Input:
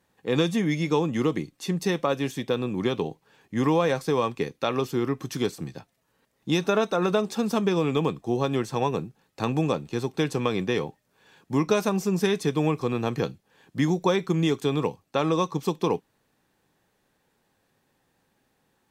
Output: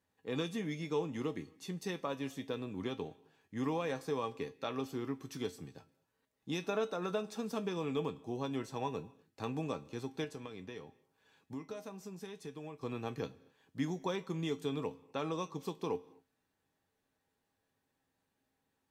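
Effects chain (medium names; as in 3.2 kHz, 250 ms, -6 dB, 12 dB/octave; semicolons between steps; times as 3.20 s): 10.24–12.83 s: compression 4:1, threshold -31 dBFS, peak gain reduction 12 dB; feedback comb 89 Hz, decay 0.18 s, harmonics odd, mix 70%; reverberation, pre-delay 33 ms, DRR 21 dB; trim -6 dB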